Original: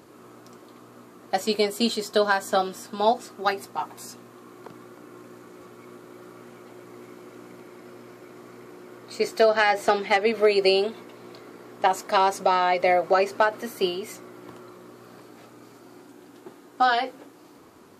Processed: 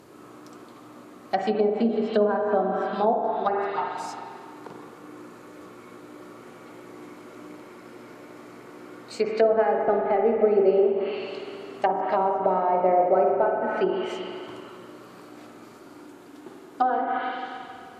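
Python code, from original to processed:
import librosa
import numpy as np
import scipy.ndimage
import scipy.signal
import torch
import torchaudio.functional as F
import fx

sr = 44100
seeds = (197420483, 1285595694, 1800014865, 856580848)

y = fx.rev_spring(x, sr, rt60_s=2.2, pass_ms=(43, 53), chirp_ms=25, drr_db=1.0)
y = fx.env_lowpass_down(y, sr, base_hz=720.0, full_db=-17.5)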